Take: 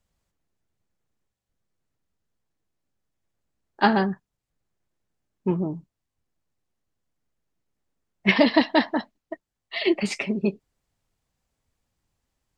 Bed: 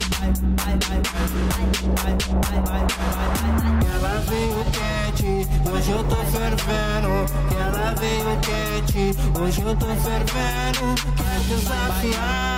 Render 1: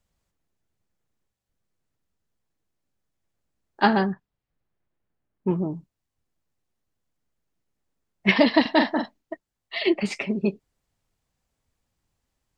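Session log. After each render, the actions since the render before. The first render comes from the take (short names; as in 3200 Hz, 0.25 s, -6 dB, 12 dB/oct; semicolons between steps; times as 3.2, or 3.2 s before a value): 4.12–5.49 LPF 4200 Hz -> 2100 Hz; 8.61–9.33 doubler 44 ms -5.5 dB; 9.9–10.3 high shelf 4500 Hz -6 dB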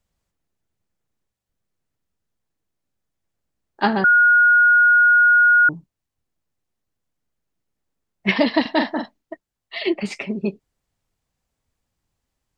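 4.04–5.69 bleep 1440 Hz -10 dBFS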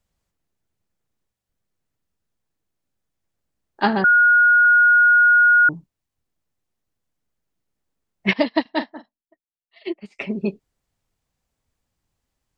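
4.02–4.65 LPF 2700 Hz; 8.33–10.19 upward expander 2.5:1, over -30 dBFS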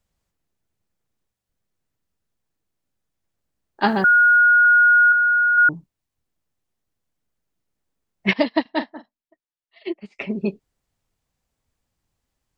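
3.86–4.37 requantised 10-bit, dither triangular; 5.12–5.58 band-pass 4000 Hz, Q 0.5; 8.55–10.3 air absorption 60 m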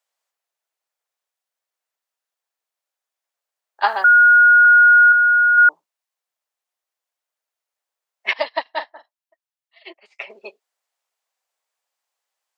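HPF 590 Hz 24 dB/oct; dynamic EQ 1100 Hz, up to +6 dB, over -28 dBFS, Q 1.7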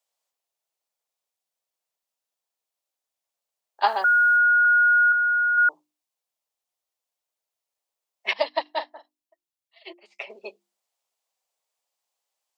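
bell 1600 Hz -8 dB 1.1 oct; notches 50/100/150/200/250/300/350 Hz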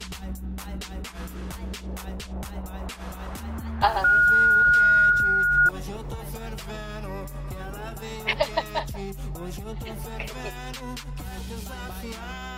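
add bed -13.5 dB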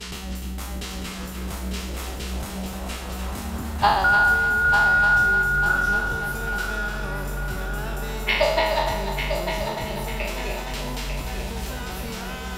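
spectral trails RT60 0.87 s; on a send: multi-head echo 0.299 s, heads first and third, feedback 61%, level -8 dB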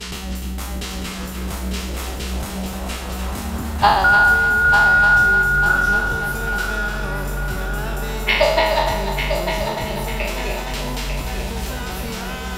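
gain +4.5 dB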